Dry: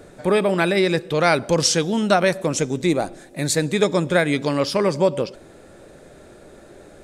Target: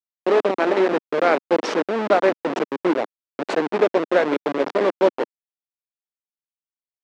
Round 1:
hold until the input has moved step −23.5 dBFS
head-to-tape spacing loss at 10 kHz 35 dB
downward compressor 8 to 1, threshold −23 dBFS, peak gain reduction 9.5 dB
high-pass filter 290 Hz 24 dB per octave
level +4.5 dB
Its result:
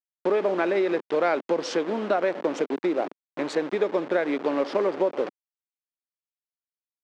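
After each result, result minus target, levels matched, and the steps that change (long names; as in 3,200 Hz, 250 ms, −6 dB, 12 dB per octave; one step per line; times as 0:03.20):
downward compressor: peak gain reduction +9.5 dB; hold until the input has moved: distortion −12 dB
remove: downward compressor 8 to 1, threshold −23 dBFS, peak gain reduction 9.5 dB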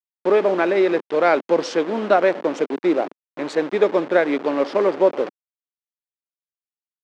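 hold until the input has moved: distortion −12 dB
change: hold until the input has moved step −14 dBFS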